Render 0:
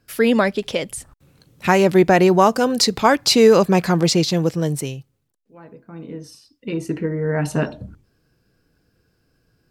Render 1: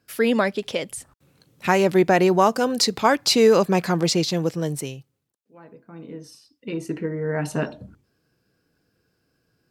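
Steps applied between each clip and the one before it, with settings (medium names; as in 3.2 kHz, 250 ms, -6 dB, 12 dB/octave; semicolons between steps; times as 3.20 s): high-pass 140 Hz 6 dB/octave; trim -3 dB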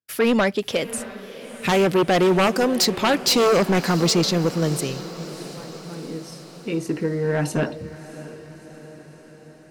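expander -48 dBFS; sine folder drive 9 dB, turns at -4.5 dBFS; echo that smears into a reverb 658 ms, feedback 62%, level -15 dB; trim -9 dB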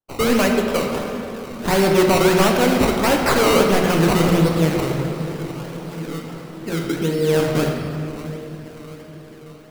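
decimation with a swept rate 18×, swing 100% 1.5 Hz; reverberation RT60 2.5 s, pre-delay 7 ms, DRR 1 dB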